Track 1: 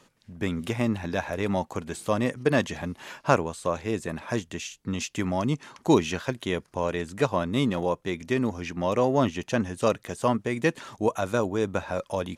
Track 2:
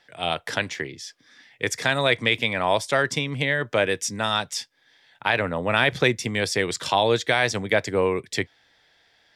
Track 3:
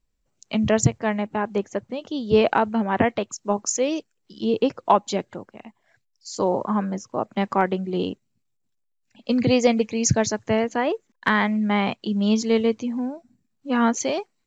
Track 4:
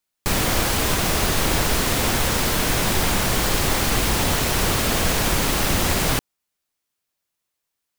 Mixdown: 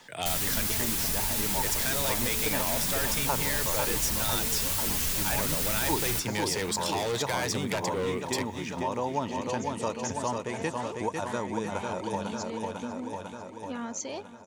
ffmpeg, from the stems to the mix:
ffmpeg -i stem1.wav -i stem2.wav -i stem3.wav -i stem4.wav -filter_complex "[0:a]lowpass=frequency=9800:width=0.5412,lowpass=frequency=9800:width=1.3066,equalizer=frequency=900:width=6.9:gain=13.5,volume=-2dB,asplit=2[link_01][link_02];[link_02]volume=-5dB[link_03];[1:a]asoftclip=type=tanh:threshold=-22dB,volume=3dB[link_04];[2:a]alimiter=limit=-16.5dB:level=0:latency=1,volume=-10dB,asplit=2[link_05][link_06];[link_06]volume=-19.5dB[link_07];[3:a]equalizer=frequency=500:width=0.56:gain=-9.5,asplit=2[link_08][link_09];[link_09]adelay=7.2,afreqshift=2.3[link_10];[link_08][link_10]amix=inputs=2:normalize=1,volume=-0.5dB,asplit=2[link_11][link_12];[link_12]volume=-23dB[link_13];[link_03][link_07][link_13]amix=inputs=3:normalize=0,aecho=0:1:498|996|1494|1992|2490|2988|3486|3984|4482:1|0.58|0.336|0.195|0.113|0.0656|0.0381|0.0221|0.0128[link_14];[link_01][link_04][link_05][link_11][link_14]amix=inputs=5:normalize=0,highshelf=frequency=6300:gain=12,acompressor=threshold=-33dB:ratio=2" out.wav

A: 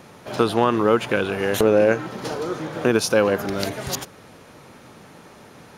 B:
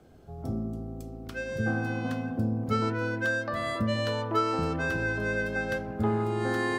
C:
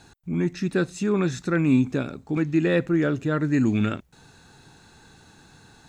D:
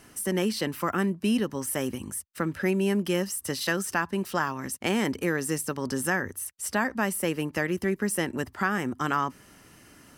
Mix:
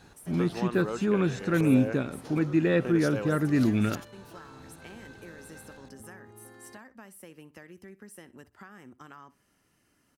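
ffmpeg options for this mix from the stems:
ffmpeg -i stem1.wav -i stem2.wav -i stem3.wav -i stem4.wav -filter_complex "[0:a]volume=-17dB[link_01];[1:a]acompressor=threshold=-32dB:ratio=6,volume=-16.5dB[link_02];[2:a]highshelf=frequency=5400:gain=-9,volume=-2.5dB[link_03];[3:a]acompressor=threshold=-27dB:ratio=6,volume=-17dB,asplit=2[link_04][link_05];[link_05]volume=-18.5dB,aecho=0:1:62|124|186:1|0.21|0.0441[link_06];[link_01][link_02][link_03][link_04][link_06]amix=inputs=5:normalize=0" out.wav

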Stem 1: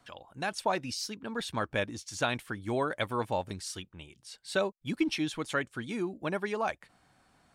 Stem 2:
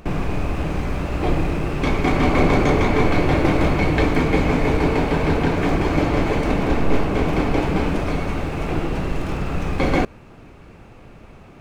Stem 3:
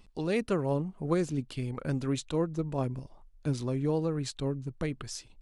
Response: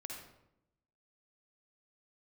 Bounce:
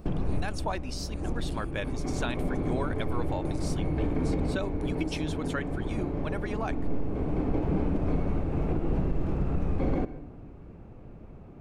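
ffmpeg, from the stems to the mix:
-filter_complex "[0:a]volume=-3.5dB,asplit=2[link_01][link_02];[1:a]tiltshelf=frequency=1100:gain=9.5,volume=-12.5dB,asplit=2[link_03][link_04];[link_04]volume=-10dB[link_05];[2:a]aemphasis=mode=production:type=riaa,acompressor=threshold=-39dB:ratio=6,volume=-12dB[link_06];[link_02]apad=whole_len=511880[link_07];[link_03][link_07]sidechaincompress=threshold=-48dB:ratio=8:attack=23:release=907[link_08];[3:a]atrim=start_sample=2205[link_09];[link_05][link_09]afir=irnorm=-1:irlink=0[link_10];[link_01][link_08][link_06][link_10]amix=inputs=4:normalize=0,alimiter=limit=-18dB:level=0:latency=1:release=125"

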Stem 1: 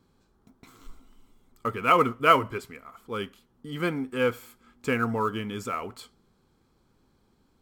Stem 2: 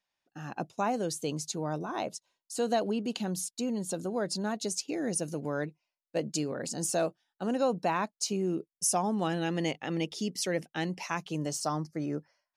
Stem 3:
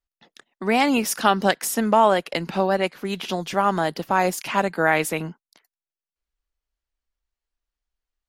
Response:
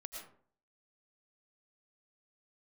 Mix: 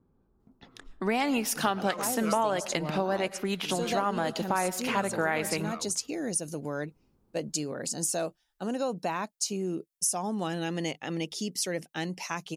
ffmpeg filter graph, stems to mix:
-filter_complex "[0:a]adynamicsmooth=sensitivity=1.5:basefreq=1000,acompressor=threshold=-48dB:ratio=1.5,volume=-1.5dB[link_01];[1:a]highshelf=frequency=5500:gain=9,adelay=1200,volume=-0.5dB[link_02];[2:a]adelay=400,volume=-2dB,asplit=2[link_03][link_04];[link_04]volume=-10.5dB[link_05];[3:a]atrim=start_sample=2205[link_06];[link_05][link_06]afir=irnorm=-1:irlink=0[link_07];[link_01][link_02][link_03][link_07]amix=inputs=4:normalize=0,acompressor=threshold=-27dB:ratio=2.5"

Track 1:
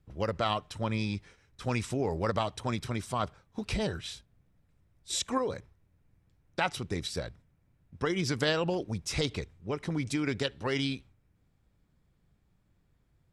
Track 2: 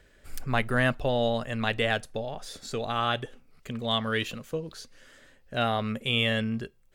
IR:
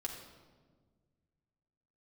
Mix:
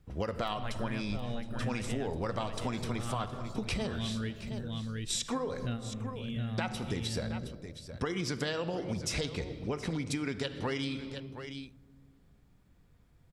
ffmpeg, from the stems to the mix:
-filter_complex "[0:a]volume=2dB,asplit=4[link_01][link_02][link_03][link_04];[link_02]volume=-3.5dB[link_05];[link_03]volume=-14.5dB[link_06];[1:a]asubboost=boost=9.5:cutoff=220,adelay=100,volume=-11dB,asplit=3[link_07][link_08][link_09];[link_08]volume=-10dB[link_10];[link_09]volume=-6dB[link_11];[link_04]apad=whole_len=310627[link_12];[link_07][link_12]sidechaingate=range=-33dB:threshold=-56dB:ratio=16:detection=peak[link_13];[2:a]atrim=start_sample=2205[link_14];[link_05][link_10]amix=inputs=2:normalize=0[link_15];[link_15][link_14]afir=irnorm=-1:irlink=0[link_16];[link_06][link_11]amix=inputs=2:normalize=0,aecho=0:1:718:1[link_17];[link_01][link_13][link_16][link_17]amix=inputs=4:normalize=0,acompressor=threshold=-31dB:ratio=6"

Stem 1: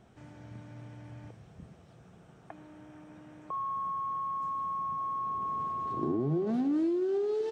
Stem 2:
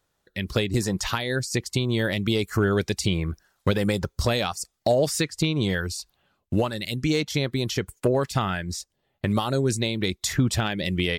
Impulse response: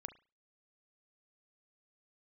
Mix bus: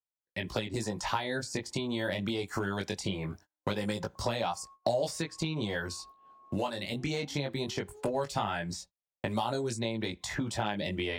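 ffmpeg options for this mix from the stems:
-filter_complex "[0:a]highpass=frequency=240:width=0.5412,highpass=frequency=240:width=1.3066,adelay=650,volume=-15.5dB[link_01];[1:a]equalizer=frequency=12000:width=3.1:gain=-12,flanger=delay=17.5:depth=3.6:speed=0.21,volume=-1dB,asplit=3[link_02][link_03][link_04];[link_03]volume=-9.5dB[link_05];[link_04]apad=whole_len=359952[link_06];[link_01][link_06]sidechaincompress=threshold=-31dB:ratio=5:attack=11:release=926[link_07];[2:a]atrim=start_sample=2205[link_08];[link_05][link_08]afir=irnorm=-1:irlink=0[link_09];[link_07][link_02][link_09]amix=inputs=3:normalize=0,acrossover=split=140|2300[link_10][link_11][link_12];[link_10]acompressor=threshold=-47dB:ratio=4[link_13];[link_11]acompressor=threshold=-32dB:ratio=4[link_14];[link_12]acompressor=threshold=-40dB:ratio=4[link_15];[link_13][link_14][link_15]amix=inputs=3:normalize=0,superequalizer=8b=1.78:9b=2.51,agate=range=-35dB:threshold=-50dB:ratio=16:detection=peak"

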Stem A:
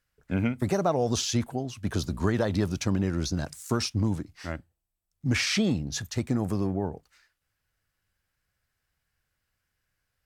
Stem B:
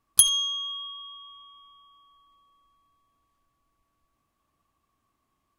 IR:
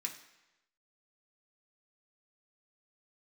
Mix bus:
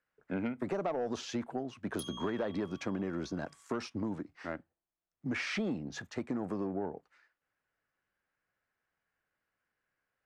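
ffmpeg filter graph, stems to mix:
-filter_complex "[0:a]lowpass=8200,volume=-0.5dB[link_01];[1:a]acrusher=bits=8:mix=0:aa=0.5,adelay=1800,volume=-12.5dB[link_02];[link_01][link_02]amix=inputs=2:normalize=0,acrossover=split=200 2300:gain=0.112 1 0.178[link_03][link_04][link_05];[link_03][link_04][link_05]amix=inputs=3:normalize=0,asoftclip=type=tanh:threshold=-21dB,acompressor=threshold=-32dB:ratio=3"

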